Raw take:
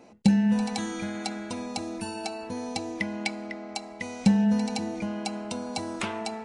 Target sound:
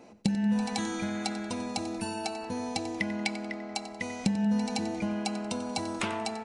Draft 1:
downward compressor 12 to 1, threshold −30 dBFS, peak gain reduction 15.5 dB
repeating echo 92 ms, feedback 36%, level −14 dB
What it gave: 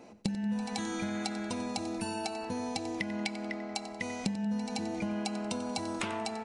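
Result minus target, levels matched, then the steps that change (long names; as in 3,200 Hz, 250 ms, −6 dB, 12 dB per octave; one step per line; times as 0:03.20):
downward compressor: peak gain reduction +6 dB
change: downward compressor 12 to 1, threshold −23.5 dBFS, peak gain reduction 10 dB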